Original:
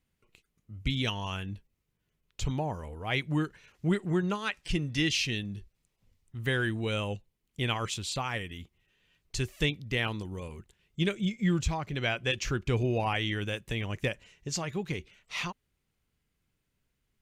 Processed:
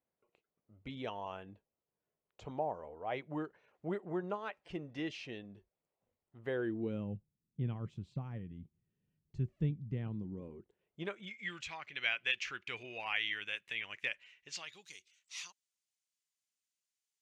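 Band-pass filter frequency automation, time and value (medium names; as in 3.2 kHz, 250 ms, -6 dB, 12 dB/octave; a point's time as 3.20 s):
band-pass filter, Q 1.7
6.45 s 640 Hz
7.14 s 160 Hz
10.14 s 160 Hz
11.03 s 770 Hz
11.41 s 2.3 kHz
14.50 s 2.3 kHz
14.90 s 6.7 kHz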